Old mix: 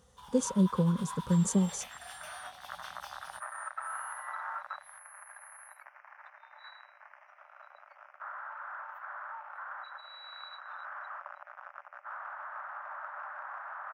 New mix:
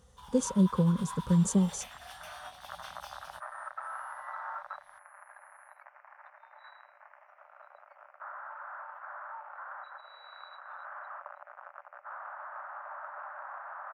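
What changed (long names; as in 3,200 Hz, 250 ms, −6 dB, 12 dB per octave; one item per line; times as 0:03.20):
second sound: add spectral tilt −4 dB per octave
master: add low-shelf EQ 79 Hz +9.5 dB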